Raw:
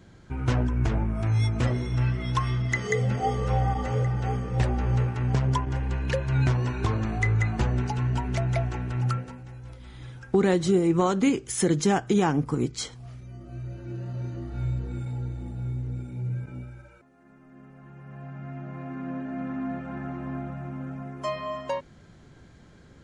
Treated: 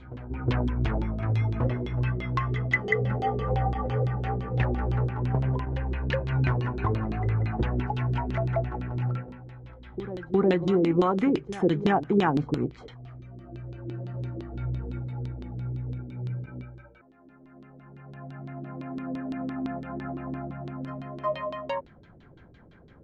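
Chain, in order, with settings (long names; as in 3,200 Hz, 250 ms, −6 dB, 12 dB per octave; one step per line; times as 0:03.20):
backwards echo 363 ms −14.5 dB
auto-filter low-pass saw down 5.9 Hz 300–3,900 Hz
level −2.5 dB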